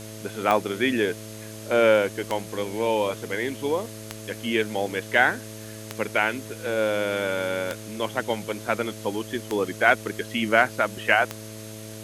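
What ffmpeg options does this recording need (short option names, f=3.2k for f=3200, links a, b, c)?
-af "adeclick=t=4,bandreject=f=108.5:t=h:w=4,bandreject=f=217:t=h:w=4,bandreject=f=325.5:t=h:w=4,bandreject=f=434:t=h:w=4,bandreject=f=542.5:t=h:w=4,bandreject=f=651:t=h:w=4,bandreject=f=6.4k:w=30,afwtdn=0.0071"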